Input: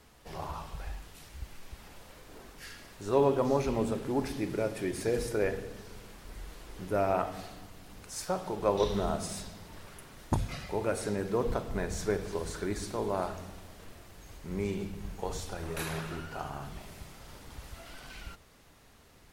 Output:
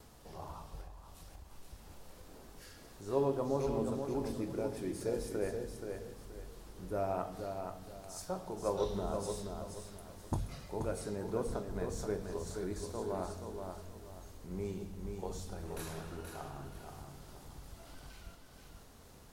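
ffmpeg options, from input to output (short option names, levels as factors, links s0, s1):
-filter_complex "[0:a]acompressor=mode=upward:threshold=0.00891:ratio=2.5,equalizer=f=2200:t=o:w=1.5:g=-7.5,asplit=2[s0][s1];[s1]aecho=0:1:478|956|1434|1912:0.501|0.15|0.0451|0.0135[s2];[s0][s2]amix=inputs=2:normalize=0,agate=range=0.0224:threshold=0.00224:ratio=3:detection=peak,asplit=2[s3][s4];[s4]adelay=22,volume=0.251[s5];[s3][s5]amix=inputs=2:normalize=0,asettb=1/sr,asplit=3[s6][s7][s8];[s6]atrim=end=0.814[s9];[s7]atrim=start=0.81:end=1.51,asetpts=PTS-STARTPTS,afade=t=in:d=0.004:c=qsin,afade=t=out:st=0.696:d=0.004:c=qsin,acompressor=threshold=0.00891:ratio=6[s10];[s8]atrim=start=1.506[s11];[s9][s10]acrossfade=d=0.004:c1=hsin:c2=qsin[s12];[s12][s11]acrossfade=d=0.004:c1=qsin:c2=hsin,volume=0.473"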